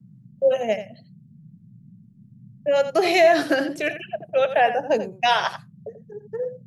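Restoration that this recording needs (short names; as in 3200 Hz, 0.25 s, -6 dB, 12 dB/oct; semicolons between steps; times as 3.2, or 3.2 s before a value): noise print and reduce 16 dB; inverse comb 86 ms -11.5 dB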